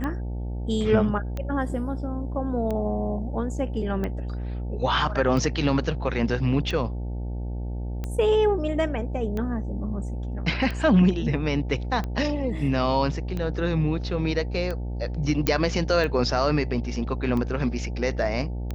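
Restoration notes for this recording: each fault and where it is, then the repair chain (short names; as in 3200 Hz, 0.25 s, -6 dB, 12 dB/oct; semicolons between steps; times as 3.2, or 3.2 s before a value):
buzz 60 Hz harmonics 15 -30 dBFS
tick 45 rpm -18 dBFS
15.47 pop -7 dBFS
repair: de-click; de-hum 60 Hz, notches 15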